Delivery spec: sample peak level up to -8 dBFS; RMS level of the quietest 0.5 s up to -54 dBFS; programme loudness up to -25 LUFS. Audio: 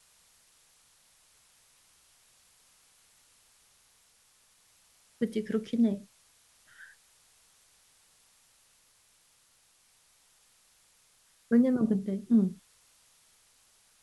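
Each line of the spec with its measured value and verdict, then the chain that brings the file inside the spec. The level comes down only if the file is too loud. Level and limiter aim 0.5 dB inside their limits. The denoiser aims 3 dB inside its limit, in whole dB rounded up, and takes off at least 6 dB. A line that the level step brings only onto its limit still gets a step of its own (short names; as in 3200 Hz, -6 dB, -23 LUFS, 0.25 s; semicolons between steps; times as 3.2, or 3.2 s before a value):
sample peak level -14.5 dBFS: OK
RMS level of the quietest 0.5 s -66 dBFS: OK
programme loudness -28.5 LUFS: OK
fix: none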